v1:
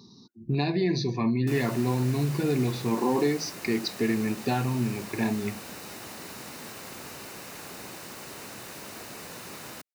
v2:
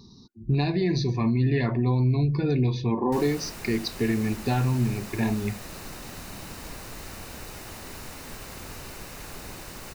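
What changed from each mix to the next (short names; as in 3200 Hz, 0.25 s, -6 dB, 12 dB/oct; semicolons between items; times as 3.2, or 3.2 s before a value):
background: entry +1.65 s; master: remove HPF 160 Hz 12 dB/oct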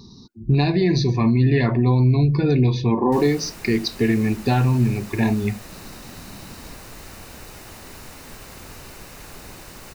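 speech +6.0 dB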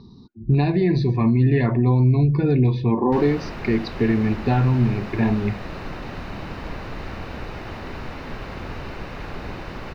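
background +9.5 dB; master: add air absorption 310 m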